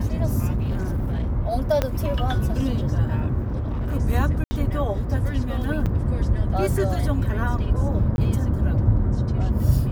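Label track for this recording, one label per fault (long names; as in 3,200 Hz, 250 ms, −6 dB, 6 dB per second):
0.540000	1.320000	clipping −20.5 dBFS
1.820000	1.820000	click −8 dBFS
3.410000	3.950000	clipping −22 dBFS
4.440000	4.510000	drop-out 70 ms
5.860000	5.870000	drop-out 6.7 ms
8.160000	8.180000	drop-out 21 ms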